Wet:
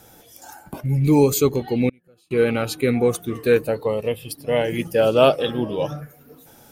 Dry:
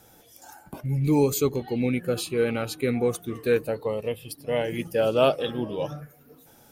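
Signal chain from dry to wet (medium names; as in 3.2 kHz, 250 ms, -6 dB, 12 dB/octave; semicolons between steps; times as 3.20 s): 1.89–2.31 s: inverted gate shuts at -29 dBFS, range -34 dB; trim +5.5 dB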